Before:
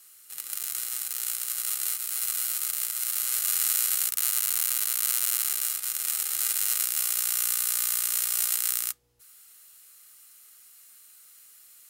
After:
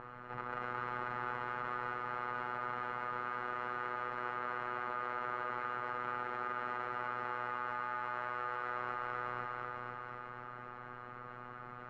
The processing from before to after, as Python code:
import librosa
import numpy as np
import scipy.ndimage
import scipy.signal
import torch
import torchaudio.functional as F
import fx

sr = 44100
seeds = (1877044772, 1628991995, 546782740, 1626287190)

p1 = x + fx.echo_feedback(x, sr, ms=495, feedback_pct=37, wet_db=-5.0, dry=0)
p2 = fx.rider(p1, sr, range_db=5, speed_s=0.5)
p3 = fx.peak_eq(p2, sr, hz=170.0, db=9.0, octaves=0.31)
p4 = p3 + 10.0 ** (-5.0 / 20.0) * np.pad(p3, (int(244 * sr / 1000.0), 0))[:len(p3)]
p5 = fx.robotise(p4, sr, hz=123.0)
p6 = scipy.signal.sosfilt(scipy.signal.butter(4, 1200.0, 'lowpass', fs=sr, output='sos'), p5)
p7 = fx.env_flatten(p6, sr, amount_pct=50)
y = p7 * librosa.db_to_amplitude(12.0)